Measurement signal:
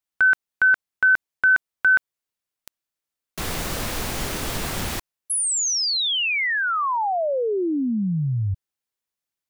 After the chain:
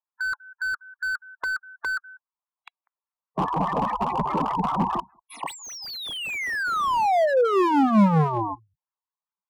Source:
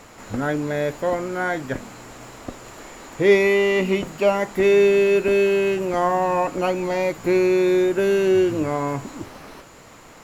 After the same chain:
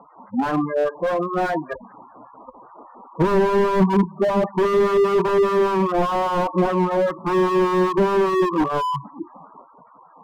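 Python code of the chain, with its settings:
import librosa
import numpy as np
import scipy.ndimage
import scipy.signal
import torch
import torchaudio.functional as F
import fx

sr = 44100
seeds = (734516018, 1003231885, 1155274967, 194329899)

p1 = fx.halfwave_hold(x, sr)
p2 = p1 + fx.echo_single(p1, sr, ms=195, db=-23.0, dry=0)
p3 = fx.noise_reduce_blind(p2, sr, reduce_db=11)
p4 = fx.peak_eq(p3, sr, hz=990.0, db=15.0, octaves=1.0)
p5 = fx.harmonic_tremolo(p4, sr, hz=5.0, depth_pct=70, crossover_hz=1200.0)
p6 = scipy.signal.sosfilt(scipy.signal.butter(2, 3500.0, 'lowpass', fs=sr, output='sos'), p5)
p7 = fx.spec_gate(p6, sr, threshold_db=-10, keep='strong')
p8 = scipy.signal.sosfilt(scipy.signal.butter(2, 43.0, 'highpass', fs=sr, output='sos'), p7)
p9 = fx.low_shelf_res(p8, sr, hz=130.0, db=-10.5, q=3.0)
y = fx.slew_limit(p9, sr, full_power_hz=84.0)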